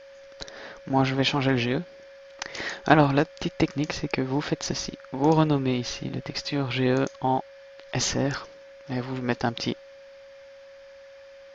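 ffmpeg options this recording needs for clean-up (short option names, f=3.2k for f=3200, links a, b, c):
-af "bandreject=f=550:w=30"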